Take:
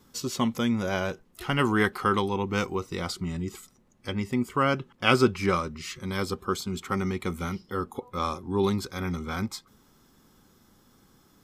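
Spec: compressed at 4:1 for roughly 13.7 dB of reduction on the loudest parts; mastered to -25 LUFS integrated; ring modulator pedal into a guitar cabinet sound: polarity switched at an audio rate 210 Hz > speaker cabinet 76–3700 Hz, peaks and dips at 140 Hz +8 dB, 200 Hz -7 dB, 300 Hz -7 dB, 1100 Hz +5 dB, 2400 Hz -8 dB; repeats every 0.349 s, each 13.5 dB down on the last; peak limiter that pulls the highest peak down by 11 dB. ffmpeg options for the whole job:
-af "acompressor=threshold=-32dB:ratio=4,alimiter=level_in=3dB:limit=-24dB:level=0:latency=1,volume=-3dB,aecho=1:1:349|698:0.211|0.0444,aeval=exprs='val(0)*sgn(sin(2*PI*210*n/s))':c=same,highpass=76,equalizer=f=140:t=q:w=4:g=8,equalizer=f=200:t=q:w=4:g=-7,equalizer=f=300:t=q:w=4:g=-7,equalizer=f=1.1k:t=q:w=4:g=5,equalizer=f=2.4k:t=q:w=4:g=-8,lowpass=f=3.7k:w=0.5412,lowpass=f=3.7k:w=1.3066,volume=14dB"

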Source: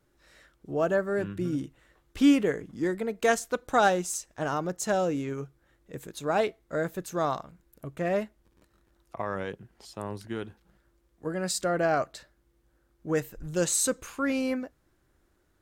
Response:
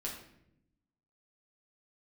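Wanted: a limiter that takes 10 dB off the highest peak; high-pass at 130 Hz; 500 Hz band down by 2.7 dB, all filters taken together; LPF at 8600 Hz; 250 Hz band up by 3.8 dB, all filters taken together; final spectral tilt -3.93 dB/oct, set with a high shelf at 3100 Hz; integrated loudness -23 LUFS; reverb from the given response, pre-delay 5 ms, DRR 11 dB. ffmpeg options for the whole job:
-filter_complex "[0:a]highpass=130,lowpass=8.6k,equalizer=f=250:t=o:g=6.5,equalizer=f=500:t=o:g=-5.5,highshelf=f=3.1k:g=8.5,alimiter=limit=-17dB:level=0:latency=1,asplit=2[a][b];[1:a]atrim=start_sample=2205,adelay=5[c];[b][c]afir=irnorm=-1:irlink=0,volume=-11.5dB[d];[a][d]amix=inputs=2:normalize=0,volume=6.5dB"

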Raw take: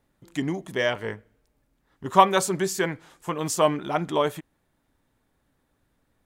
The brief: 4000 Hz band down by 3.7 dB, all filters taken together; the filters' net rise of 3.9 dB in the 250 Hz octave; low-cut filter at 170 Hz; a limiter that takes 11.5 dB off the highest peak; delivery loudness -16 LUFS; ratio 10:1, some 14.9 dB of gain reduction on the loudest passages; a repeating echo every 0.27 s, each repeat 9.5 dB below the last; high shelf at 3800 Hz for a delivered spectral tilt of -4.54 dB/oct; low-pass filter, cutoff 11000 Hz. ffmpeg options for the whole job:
-af "highpass=170,lowpass=11k,equalizer=f=250:t=o:g=7,highshelf=f=3.8k:g=3.5,equalizer=f=4k:t=o:g=-7.5,acompressor=threshold=-25dB:ratio=10,alimiter=level_in=1.5dB:limit=-24dB:level=0:latency=1,volume=-1.5dB,aecho=1:1:270|540|810|1080:0.335|0.111|0.0365|0.012,volume=19.5dB"

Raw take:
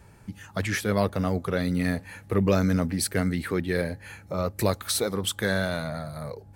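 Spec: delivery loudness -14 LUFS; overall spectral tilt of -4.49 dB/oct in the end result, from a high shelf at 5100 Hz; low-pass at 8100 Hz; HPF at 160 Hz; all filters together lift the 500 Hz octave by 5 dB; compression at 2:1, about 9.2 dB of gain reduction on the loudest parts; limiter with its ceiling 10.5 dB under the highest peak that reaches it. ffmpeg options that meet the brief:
-af "highpass=160,lowpass=8.1k,equalizer=f=500:t=o:g=6,highshelf=f=5.1k:g=4.5,acompressor=threshold=-32dB:ratio=2,volume=23dB,alimiter=limit=-3.5dB:level=0:latency=1"

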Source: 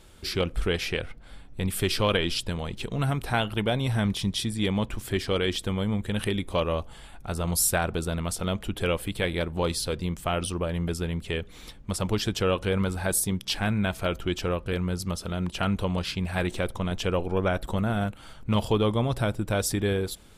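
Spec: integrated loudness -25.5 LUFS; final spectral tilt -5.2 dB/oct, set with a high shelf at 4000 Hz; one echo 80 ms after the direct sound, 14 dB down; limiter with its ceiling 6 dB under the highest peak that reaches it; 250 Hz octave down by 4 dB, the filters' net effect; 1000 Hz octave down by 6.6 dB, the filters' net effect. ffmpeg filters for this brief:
-af "equalizer=f=250:t=o:g=-5.5,equalizer=f=1k:t=o:g=-8.5,highshelf=f=4k:g=-7.5,alimiter=limit=-19.5dB:level=0:latency=1,aecho=1:1:80:0.2,volume=6dB"

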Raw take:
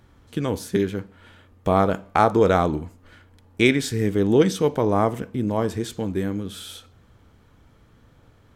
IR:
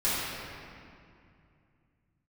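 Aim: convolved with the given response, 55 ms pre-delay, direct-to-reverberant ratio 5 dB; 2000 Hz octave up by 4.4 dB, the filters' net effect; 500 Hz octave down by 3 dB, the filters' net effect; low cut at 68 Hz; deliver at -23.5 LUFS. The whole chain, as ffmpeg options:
-filter_complex "[0:a]highpass=68,equalizer=f=500:t=o:g=-4,equalizer=f=2k:t=o:g=5.5,asplit=2[a][b];[1:a]atrim=start_sample=2205,adelay=55[c];[b][c]afir=irnorm=-1:irlink=0,volume=-17dB[d];[a][d]amix=inputs=2:normalize=0,volume=-1.5dB"

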